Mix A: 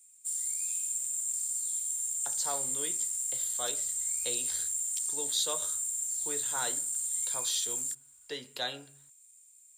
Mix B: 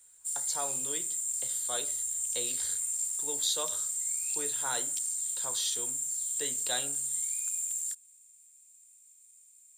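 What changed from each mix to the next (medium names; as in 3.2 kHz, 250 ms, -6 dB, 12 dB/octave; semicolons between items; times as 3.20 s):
speech: entry -1.90 s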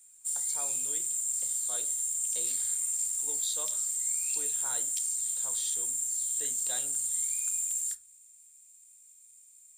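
speech -8.0 dB; background: send on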